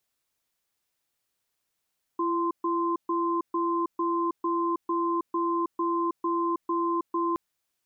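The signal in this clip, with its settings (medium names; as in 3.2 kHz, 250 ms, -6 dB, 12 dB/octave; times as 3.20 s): cadence 338 Hz, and 1.04 kHz, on 0.32 s, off 0.13 s, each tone -26.5 dBFS 5.17 s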